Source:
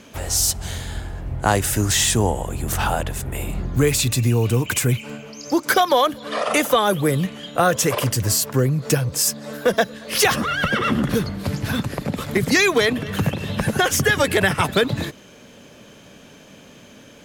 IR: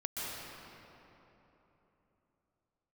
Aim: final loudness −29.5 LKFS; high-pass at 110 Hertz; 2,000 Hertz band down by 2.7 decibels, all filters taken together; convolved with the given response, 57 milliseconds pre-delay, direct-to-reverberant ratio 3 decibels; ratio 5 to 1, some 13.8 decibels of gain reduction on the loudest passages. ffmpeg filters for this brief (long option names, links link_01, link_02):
-filter_complex "[0:a]highpass=110,equalizer=frequency=2000:width_type=o:gain=-3.5,acompressor=threshold=-29dB:ratio=5,asplit=2[link_01][link_02];[1:a]atrim=start_sample=2205,adelay=57[link_03];[link_02][link_03]afir=irnorm=-1:irlink=0,volume=-7dB[link_04];[link_01][link_04]amix=inputs=2:normalize=0,volume=0.5dB"